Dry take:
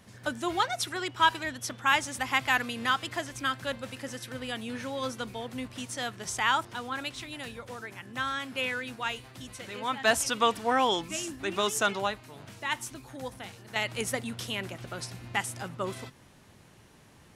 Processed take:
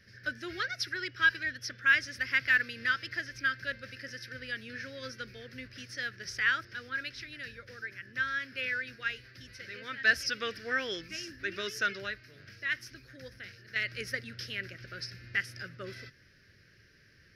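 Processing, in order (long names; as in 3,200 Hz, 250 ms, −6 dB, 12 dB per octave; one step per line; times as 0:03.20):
drawn EQ curve 100 Hz 0 dB, 240 Hz −8 dB, 400 Hz −3 dB, 570 Hz −6 dB, 880 Hz −29 dB, 1,600 Hz +9 dB, 3,500 Hz −5 dB, 5,200 Hz +9 dB, 7,500 Hz −22 dB, 12,000 Hz −8 dB
level −4 dB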